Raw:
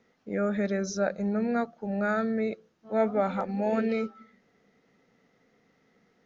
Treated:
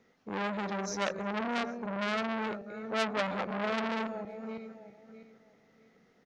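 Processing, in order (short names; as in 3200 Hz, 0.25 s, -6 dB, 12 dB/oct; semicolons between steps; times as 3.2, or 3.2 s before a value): regenerating reverse delay 0.327 s, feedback 46%, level -12 dB; speakerphone echo 0.36 s, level -20 dB; core saturation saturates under 2800 Hz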